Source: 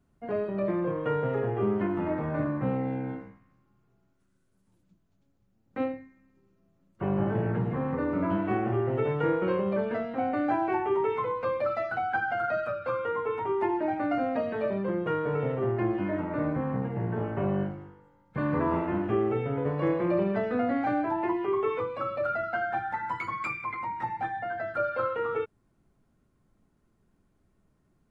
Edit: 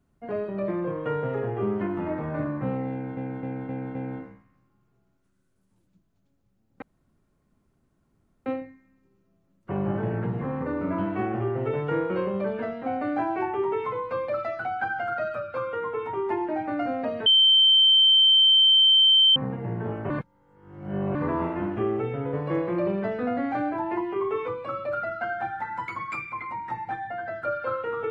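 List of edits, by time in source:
2.91–3.17 loop, 5 plays
5.78 insert room tone 1.64 s
14.58–16.68 bleep 3110 Hz -14 dBFS
17.42–18.47 reverse

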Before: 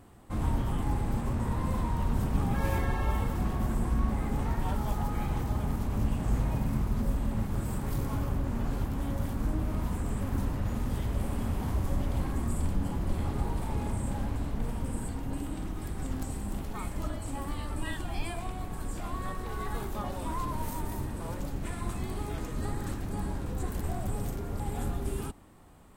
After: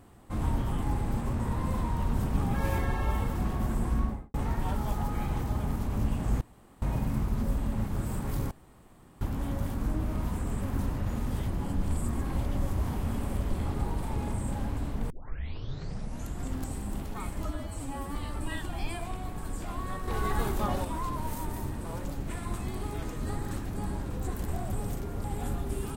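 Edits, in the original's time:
3.97–4.34 studio fade out
6.41 insert room tone 0.41 s
8.1–8.8 room tone
11.07–13.09 reverse
14.69 tape start 1.40 s
17.04–17.51 stretch 1.5×
19.43–20.2 gain +5.5 dB

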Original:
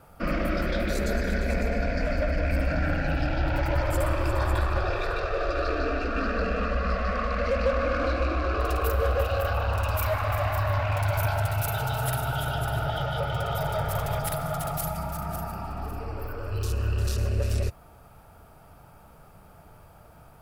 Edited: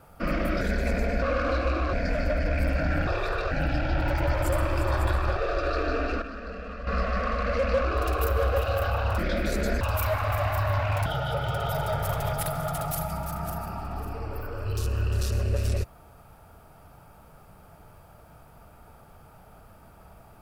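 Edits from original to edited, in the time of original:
0.61–1.24 move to 9.81
4.85–5.29 move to 2.99
6.14–6.79 gain -10.5 dB
7.77–8.48 move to 1.85
11.06–12.92 cut

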